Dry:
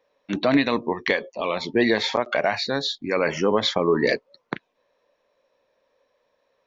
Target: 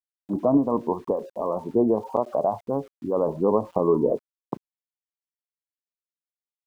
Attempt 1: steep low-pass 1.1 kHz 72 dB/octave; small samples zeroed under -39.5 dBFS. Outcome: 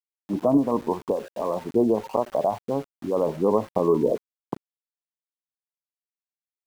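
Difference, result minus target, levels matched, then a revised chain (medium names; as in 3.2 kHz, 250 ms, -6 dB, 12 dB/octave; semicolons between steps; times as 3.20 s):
small samples zeroed: distortion +13 dB
steep low-pass 1.1 kHz 72 dB/octave; small samples zeroed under -50 dBFS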